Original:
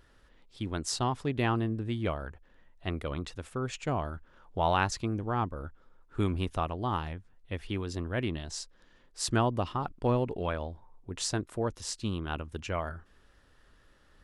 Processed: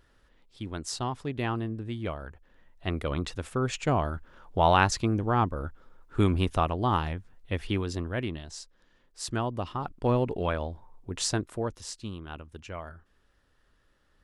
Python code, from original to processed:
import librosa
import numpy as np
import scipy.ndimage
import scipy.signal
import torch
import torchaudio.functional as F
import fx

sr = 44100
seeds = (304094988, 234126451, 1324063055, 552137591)

y = fx.gain(x, sr, db=fx.line((2.18, -2.0), (3.24, 5.5), (7.71, 5.5), (8.53, -3.5), (9.42, -3.5), (10.28, 3.5), (11.31, 3.5), (12.19, -6.0)))